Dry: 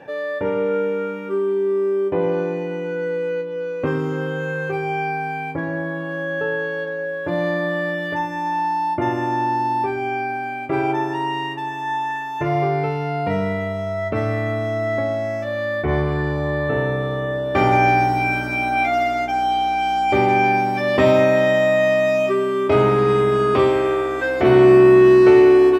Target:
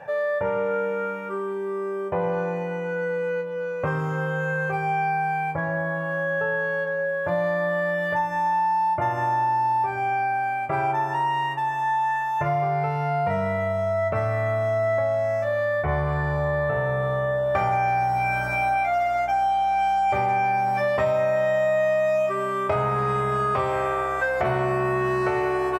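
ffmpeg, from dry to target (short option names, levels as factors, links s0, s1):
-af "firequalizer=gain_entry='entry(170,0);entry(270,-17);entry(590,3);entry(1300,3);entry(3300,-7);entry(7700,1)':delay=0.05:min_phase=1,acompressor=threshold=0.1:ratio=6"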